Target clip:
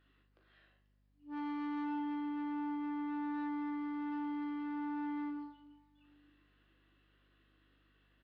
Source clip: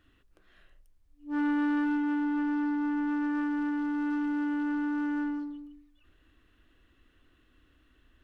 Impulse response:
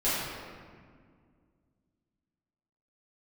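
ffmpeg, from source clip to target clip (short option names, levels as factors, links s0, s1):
-filter_complex "[0:a]aresample=11025,aresample=44100,asoftclip=type=tanh:threshold=0.0376,highpass=320,asplit=2[s0][s1];[s1]adelay=18,volume=0.501[s2];[s0][s2]amix=inputs=2:normalize=0,aecho=1:1:40|59:0.398|0.335,asplit=2[s3][s4];[1:a]atrim=start_sample=2205,asetrate=57330,aresample=44100,lowshelf=f=230:g=10.5[s5];[s4][s5]afir=irnorm=-1:irlink=0,volume=0.075[s6];[s3][s6]amix=inputs=2:normalize=0,aeval=exprs='val(0)+0.000562*(sin(2*PI*50*n/s)+sin(2*PI*2*50*n/s)/2+sin(2*PI*3*50*n/s)/3+sin(2*PI*4*50*n/s)/4+sin(2*PI*5*50*n/s)/5)':c=same,volume=0.447"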